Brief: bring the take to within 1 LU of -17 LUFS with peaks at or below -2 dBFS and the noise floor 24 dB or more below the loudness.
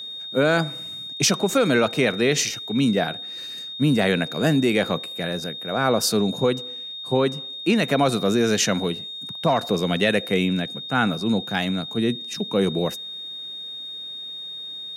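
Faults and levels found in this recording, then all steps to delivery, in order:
steady tone 3.7 kHz; tone level -32 dBFS; loudness -23.0 LUFS; peak level -6.0 dBFS; loudness target -17.0 LUFS
-> band-stop 3.7 kHz, Q 30; trim +6 dB; peak limiter -2 dBFS

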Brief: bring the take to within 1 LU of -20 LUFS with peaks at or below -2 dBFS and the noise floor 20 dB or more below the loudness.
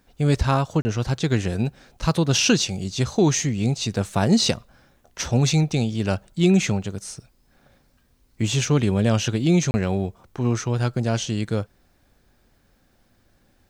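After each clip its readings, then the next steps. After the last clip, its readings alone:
dropouts 2; longest dropout 30 ms; loudness -22.5 LUFS; peak level -5.5 dBFS; loudness target -20.0 LUFS
-> interpolate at 0.82/9.71 s, 30 ms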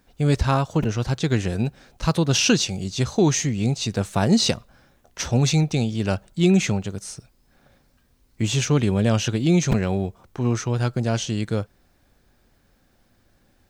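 dropouts 0; loudness -22.0 LUFS; peak level -5.5 dBFS; loudness target -20.0 LUFS
-> trim +2 dB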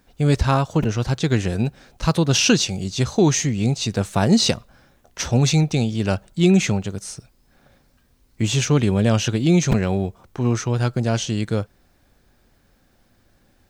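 loudness -20.0 LUFS; peak level -3.5 dBFS; noise floor -60 dBFS

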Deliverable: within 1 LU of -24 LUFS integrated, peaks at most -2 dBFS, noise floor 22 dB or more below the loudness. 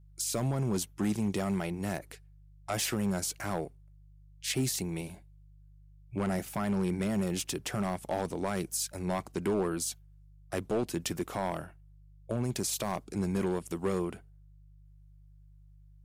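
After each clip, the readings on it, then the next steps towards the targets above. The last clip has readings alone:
clipped samples 1.2%; clipping level -23.5 dBFS; hum 50 Hz; highest harmonic 150 Hz; hum level -54 dBFS; loudness -33.0 LUFS; peak level -23.5 dBFS; loudness target -24.0 LUFS
-> clip repair -23.5 dBFS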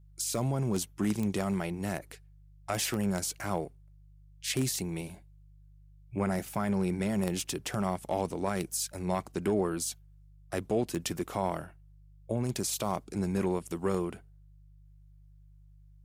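clipped samples 0.0%; hum 50 Hz; highest harmonic 150 Hz; hum level -54 dBFS
-> de-hum 50 Hz, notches 3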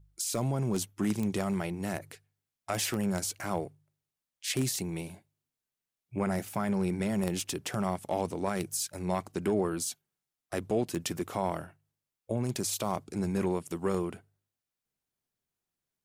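hum not found; loudness -32.5 LUFS; peak level -14.5 dBFS; loudness target -24.0 LUFS
-> trim +8.5 dB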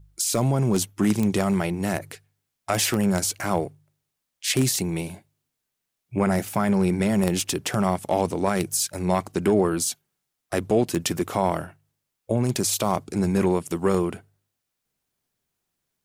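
loudness -24.0 LUFS; peak level -6.0 dBFS; noise floor -81 dBFS

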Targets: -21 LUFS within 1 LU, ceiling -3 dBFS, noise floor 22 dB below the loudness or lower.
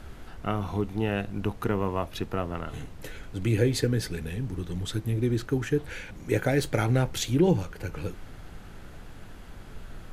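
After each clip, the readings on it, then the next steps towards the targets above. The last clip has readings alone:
noise floor -45 dBFS; noise floor target -51 dBFS; loudness -28.5 LUFS; peak level -8.5 dBFS; loudness target -21.0 LUFS
-> noise print and reduce 6 dB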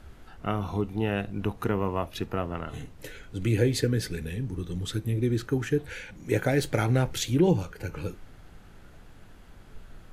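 noise floor -50 dBFS; noise floor target -51 dBFS
-> noise print and reduce 6 dB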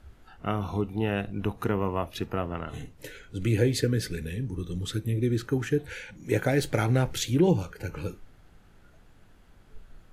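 noise floor -56 dBFS; loudness -28.5 LUFS; peak level -8.5 dBFS; loudness target -21.0 LUFS
-> trim +7.5 dB; peak limiter -3 dBFS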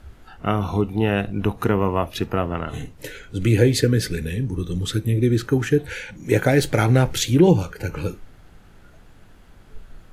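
loudness -21.0 LUFS; peak level -3.0 dBFS; noise floor -48 dBFS

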